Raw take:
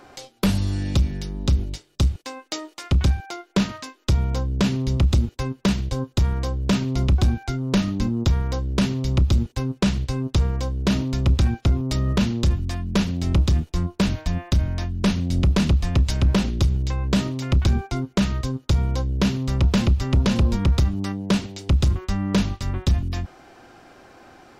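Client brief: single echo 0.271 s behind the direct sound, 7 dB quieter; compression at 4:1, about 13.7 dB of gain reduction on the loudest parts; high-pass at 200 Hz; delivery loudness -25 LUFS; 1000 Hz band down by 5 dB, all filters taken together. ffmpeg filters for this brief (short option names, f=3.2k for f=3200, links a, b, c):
-af "highpass=200,equalizer=f=1k:t=o:g=-6.5,acompressor=threshold=-35dB:ratio=4,aecho=1:1:271:0.447,volume=12.5dB"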